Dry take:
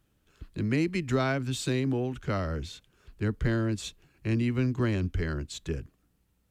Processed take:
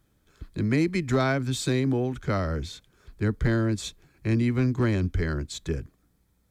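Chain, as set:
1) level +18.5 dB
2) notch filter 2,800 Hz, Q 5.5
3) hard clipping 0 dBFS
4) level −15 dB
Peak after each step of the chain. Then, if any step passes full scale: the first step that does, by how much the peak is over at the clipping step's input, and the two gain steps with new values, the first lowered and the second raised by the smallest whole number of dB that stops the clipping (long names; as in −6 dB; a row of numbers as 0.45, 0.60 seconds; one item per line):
+4.5, +4.5, 0.0, −15.0 dBFS
step 1, 4.5 dB
step 1 +13.5 dB, step 4 −10 dB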